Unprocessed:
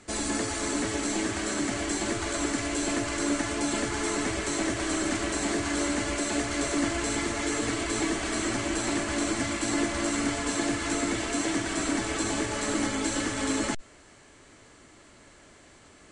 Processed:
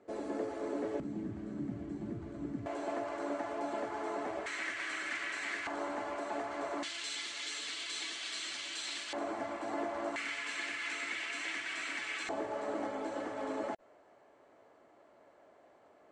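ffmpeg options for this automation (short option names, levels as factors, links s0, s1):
-af "asetnsamples=n=441:p=0,asendcmd='1 bandpass f 160;2.66 bandpass f 710;4.46 bandpass f 2000;5.67 bandpass f 820;6.83 bandpass f 3600;9.13 bandpass f 740;10.16 bandpass f 2300;12.29 bandpass f 660',bandpass=f=500:t=q:w=2.1:csg=0"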